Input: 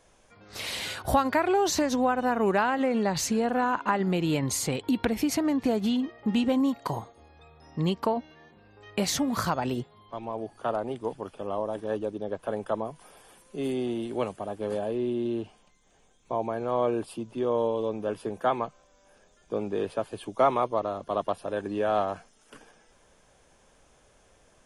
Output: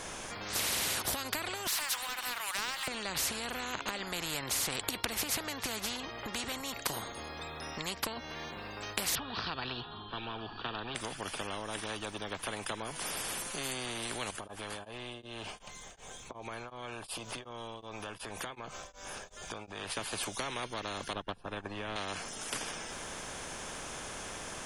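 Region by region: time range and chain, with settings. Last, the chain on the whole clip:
1.67–2.88 steep high-pass 960 Hz 48 dB/oct + bell 6500 Hz -14 dB 0.37 oct + sample leveller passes 1
9.15–10.95 steep low-pass 4100 Hz + fixed phaser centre 2100 Hz, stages 6
14.3–19.97 bell 250 Hz -8.5 dB 1.8 oct + compressor 4:1, threshold -47 dBFS + beating tremolo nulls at 2.7 Hz
21.13–21.96 tilt -4 dB/oct + upward expander 2.5:1, over -35 dBFS
whole clip: compressor 2.5:1, threshold -36 dBFS; spectral compressor 4:1; gain +8 dB

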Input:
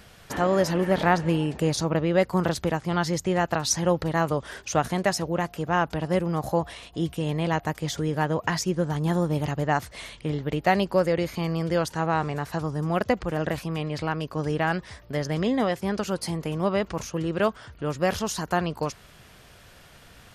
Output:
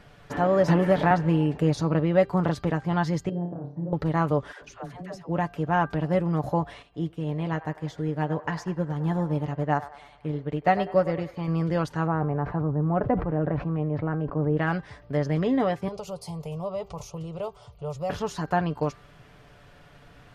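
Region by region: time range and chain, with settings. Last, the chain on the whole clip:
0.68–1.11 high shelf 5700 Hz +5 dB + three-band squash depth 100%
3.29–3.93 compressor 5:1, threshold -27 dBFS + Butterworth band-pass 260 Hz, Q 0.76 + flutter echo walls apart 4.9 m, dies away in 0.43 s
4.52–5.29 compressor 3:1, threshold -38 dBFS + dispersion lows, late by 99 ms, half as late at 540 Hz
6.82–11.48 band-limited delay 98 ms, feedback 57%, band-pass 1000 Hz, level -9.5 dB + upward expander, over -37 dBFS
12.07–14.57 LPF 1200 Hz + sustainer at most 76 dB/s
15.88–18.1 high shelf 6200 Hz +10 dB + compressor 2:1, threshold -28 dBFS + fixed phaser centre 690 Hz, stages 4
whole clip: LPF 1600 Hz 6 dB/oct; comb 6.9 ms, depth 46%; de-hum 395.5 Hz, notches 13

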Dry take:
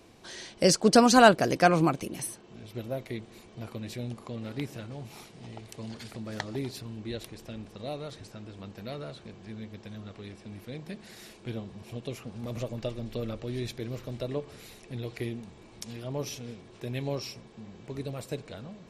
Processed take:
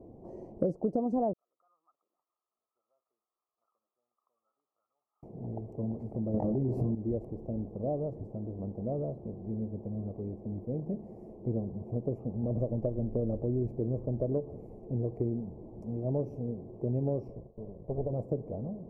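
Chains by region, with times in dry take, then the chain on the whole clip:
1.33–5.23 compressor 10:1, threshold -31 dBFS + Butterworth band-pass 1300 Hz, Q 7.8
6.34–6.95 doubler 23 ms -4 dB + fast leveller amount 100%
17.28–18.13 minimum comb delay 1.8 ms + air absorption 99 m + expander -50 dBFS
whole clip: inverse Chebyshev low-pass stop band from 1400 Hz, stop band 40 dB; compressor 16:1, threshold -32 dBFS; gain +6 dB

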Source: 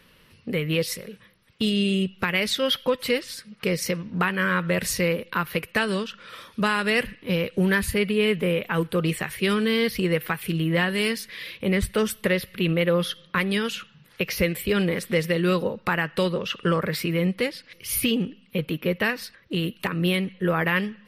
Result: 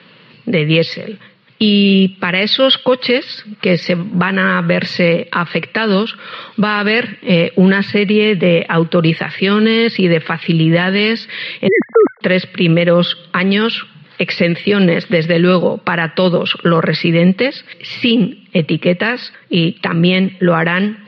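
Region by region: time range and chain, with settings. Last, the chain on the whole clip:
11.68–12.21 sine-wave speech + brick-wall FIR low-pass 2200 Hz
whole clip: Chebyshev band-pass 120–4500 Hz, order 5; maximiser +14.5 dB; gain -1 dB

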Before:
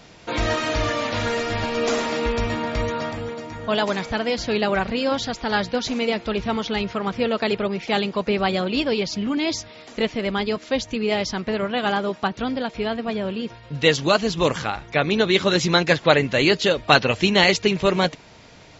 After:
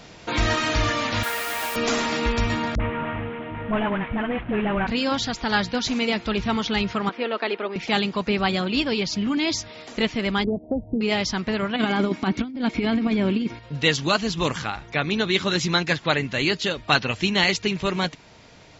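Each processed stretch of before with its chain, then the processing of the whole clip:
1.23–1.76 BPF 620–3400 Hz + requantised 6-bit, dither triangular
2.75–4.87 CVSD 16 kbps + air absorption 140 m + dispersion highs, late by 48 ms, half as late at 440 Hz
7.09–7.76 HPF 300 Hz 24 dB/oct + air absorption 250 m
10.44–11.01 steep low-pass 790 Hz 72 dB/oct + three-band squash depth 100%
11.76–13.59 small resonant body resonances 280/2200 Hz, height 15 dB, ringing for 40 ms + negative-ratio compressor -21 dBFS, ratio -0.5
whole clip: vocal rider within 3 dB 2 s; dynamic EQ 530 Hz, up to -7 dB, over -35 dBFS, Q 1.4

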